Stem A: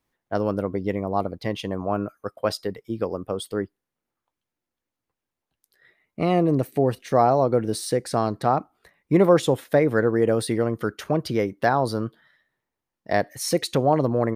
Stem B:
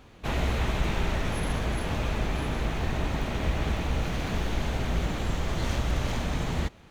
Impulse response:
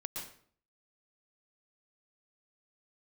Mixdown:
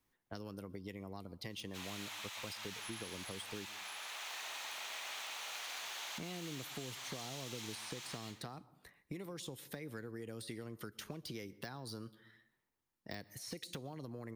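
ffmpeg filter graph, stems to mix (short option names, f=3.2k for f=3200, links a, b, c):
-filter_complex "[0:a]acompressor=threshold=-23dB:ratio=6,equalizer=f=610:w=2.1:g=-5,deesser=0.85,volume=-4dB,asplit=3[a][b][c];[b]volume=-20dB[d];[1:a]highpass=f=820:w=0.5412,highpass=f=820:w=1.3066,adelay=1500,volume=1.5dB,asplit=2[e][f];[f]volume=-6dB[g];[c]apad=whole_len=370849[h];[e][h]sidechaincompress=threshold=-51dB:ratio=8:attack=16:release=512[i];[2:a]atrim=start_sample=2205[j];[d][g]amix=inputs=2:normalize=0[k];[k][j]afir=irnorm=-1:irlink=0[l];[a][i][l]amix=inputs=3:normalize=0,highshelf=f=8.1k:g=4,acrossover=split=290|2800|5600[m][n][o][p];[m]acompressor=threshold=-50dB:ratio=4[q];[n]acompressor=threshold=-52dB:ratio=4[r];[o]acompressor=threshold=-48dB:ratio=4[s];[p]acompressor=threshold=-52dB:ratio=4[t];[q][r][s][t]amix=inputs=4:normalize=0"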